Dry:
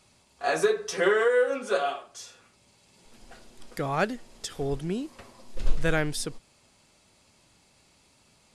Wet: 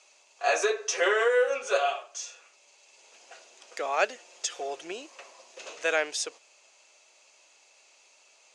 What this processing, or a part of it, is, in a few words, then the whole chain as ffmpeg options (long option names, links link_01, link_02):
phone speaker on a table: -filter_complex "[0:a]highpass=frequency=450:width=0.5412,highpass=frequency=450:width=1.3066,equalizer=frequency=630:width_type=q:width=4:gain=3,equalizer=frequency=2600:width_type=q:width=4:gain=8,equalizer=frequency=6400:width_type=q:width=4:gain=10,lowpass=frequency=8200:width=0.5412,lowpass=frequency=8200:width=1.3066,asettb=1/sr,asplit=3[link_01][link_02][link_03];[link_01]atrim=end=4.154[link_04];[link_02]atrim=start=4.15:end=4.92,asetpts=PTS-STARTPTS,afade=type=in:duration=0.004:curve=qsin,afade=type=out:start_time=0.766:duration=0.004:curve=qsin,aecho=1:1:5.7:0.54,atrim=end_sample=33957[link_05];[link_03]atrim=start=4.916[link_06];[link_04][link_05]acrossfade=duration=0.004:curve1=hsin:curve2=qsin[link_07];[link_07][link_06]acrossfade=duration=0.004:curve1=qsin:curve2=hsin"